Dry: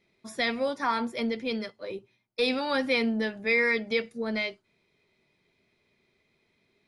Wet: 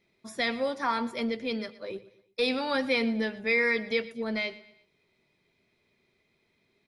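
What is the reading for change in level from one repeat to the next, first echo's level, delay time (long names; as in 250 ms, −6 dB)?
−7.5 dB, −18.0 dB, 118 ms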